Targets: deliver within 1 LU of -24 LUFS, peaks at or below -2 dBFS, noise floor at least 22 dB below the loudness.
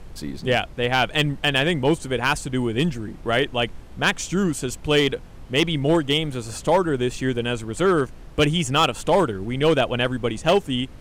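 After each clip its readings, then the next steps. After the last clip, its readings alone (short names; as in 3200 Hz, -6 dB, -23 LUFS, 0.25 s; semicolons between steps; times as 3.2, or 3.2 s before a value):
clipped 0.7%; flat tops at -11.0 dBFS; noise floor -41 dBFS; noise floor target -44 dBFS; loudness -22.0 LUFS; peak -11.0 dBFS; loudness target -24.0 LUFS
-> clip repair -11 dBFS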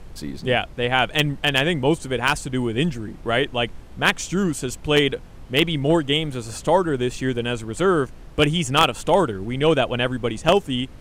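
clipped 0.0%; noise floor -41 dBFS; noise floor target -44 dBFS
-> noise print and reduce 6 dB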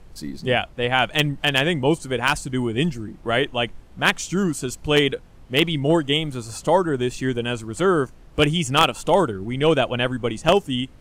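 noise floor -46 dBFS; loudness -21.5 LUFS; peak -2.0 dBFS; loudness target -24.0 LUFS
-> gain -2.5 dB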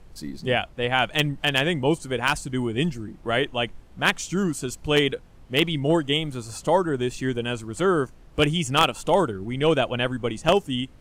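loudness -24.0 LUFS; peak -4.5 dBFS; noise floor -49 dBFS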